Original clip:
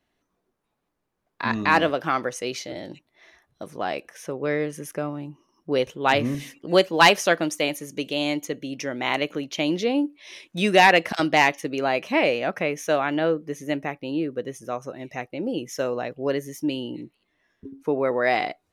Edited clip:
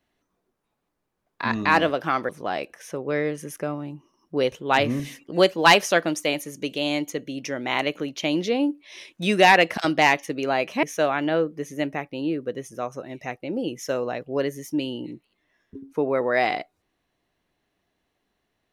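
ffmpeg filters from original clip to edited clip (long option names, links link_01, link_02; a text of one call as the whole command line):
ffmpeg -i in.wav -filter_complex "[0:a]asplit=3[link_01][link_02][link_03];[link_01]atrim=end=2.292[link_04];[link_02]atrim=start=3.638:end=12.182[link_05];[link_03]atrim=start=12.728[link_06];[link_04][link_05]acrossfade=duration=0.004:curve1=hsin:curve2=hsin[link_07];[link_07][link_06]acrossfade=duration=0.004:curve1=hsin:curve2=hsin" out.wav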